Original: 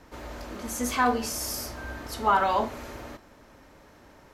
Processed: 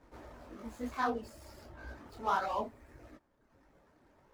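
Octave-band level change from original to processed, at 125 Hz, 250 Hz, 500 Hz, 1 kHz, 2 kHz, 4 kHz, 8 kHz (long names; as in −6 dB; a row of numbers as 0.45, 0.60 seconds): −11.5, −10.5, −9.5, −10.0, −11.0, −15.5, −25.0 decibels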